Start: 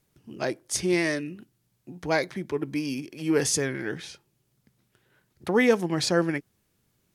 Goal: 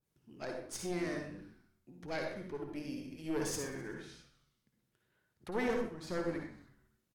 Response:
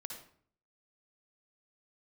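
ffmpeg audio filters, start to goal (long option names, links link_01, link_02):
-filter_complex "[0:a]aeval=exprs='(tanh(7.08*val(0)+0.7)-tanh(0.7))/7.08':channel_layout=same,asplit=5[link_01][link_02][link_03][link_04][link_05];[link_02]adelay=127,afreqshift=-94,volume=-18dB[link_06];[link_03]adelay=254,afreqshift=-188,volume=-23.8dB[link_07];[link_04]adelay=381,afreqshift=-282,volume=-29.7dB[link_08];[link_05]adelay=508,afreqshift=-376,volume=-35.5dB[link_09];[link_01][link_06][link_07][link_08][link_09]amix=inputs=5:normalize=0,asettb=1/sr,asplit=3[link_10][link_11][link_12];[link_10]atrim=end=5.684[link_13];[link_11]atrim=start=5.68:end=6.09,asetpts=PTS-STARTPTS,afade=type=in:duration=0.004:curve=qsin,afade=type=out:start_time=0.406:duration=0.004:curve=qsin,agate=range=-33dB:threshold=-23dB:ratio=3:detection=peak[link_14];[link_12]atrim=start=6.086[link_15];[link_13][link_14]acrossfade=duration=0.004:curve1=hsin:curve2=qsin[link_16];[link_16][link_15]acrossfade=duration=0.004:curve1=qsin:curve2=hsin[link_17];[1:a]atrim=start_sample=2205,afade=type=out:start_time=0.32:duration=0.01,atrim=end_sample=14553[link_18];[link_17][link_18]afir=irnorm=-1:irlink=0,adynamicequalizer=threshold=0.00355:dfrequency=1800:dqfactor=0.7:tfrequency=1800:tqfactor=0.7:attack=5:release=100:ratio=0.375:range=2.5:mode=cutabove:tftype=highshelf,volume=-5dB"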